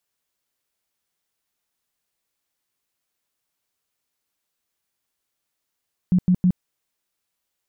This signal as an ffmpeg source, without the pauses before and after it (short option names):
-f lavfi -i "aevalsrc='0.224*sin(2*PI*181*mod(t,0.16))*lt(mod(t,0.16),12/181)':d=0.48:s=44100"